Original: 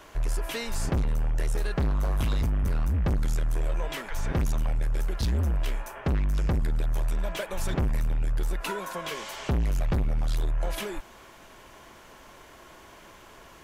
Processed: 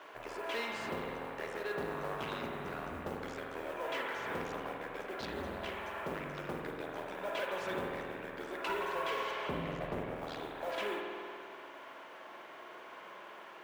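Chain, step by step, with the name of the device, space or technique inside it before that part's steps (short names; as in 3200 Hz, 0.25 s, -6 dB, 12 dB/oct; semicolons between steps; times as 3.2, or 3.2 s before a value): carbon microphone (BPF 390–3000 Hz; soft clip -29.5 dBFS, distortion -13 dB; modulation noise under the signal 23 dB); 9.31–10.16 tilt -1.5 dB/oct; spring tank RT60 2.2 s, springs 48 ms, chirp 35 ms, DRR 0.5 dB; gain -1 dB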